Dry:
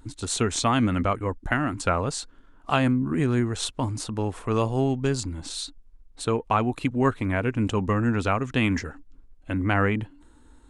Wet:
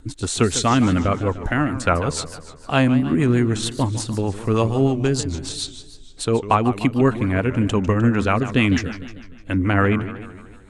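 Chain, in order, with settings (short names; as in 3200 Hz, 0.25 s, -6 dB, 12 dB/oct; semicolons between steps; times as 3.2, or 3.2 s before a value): rotary speaker horn 6.7 Hz; warbling echo 0.151 s, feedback 54%, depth 214 cents, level -13 dB; gain +7 dB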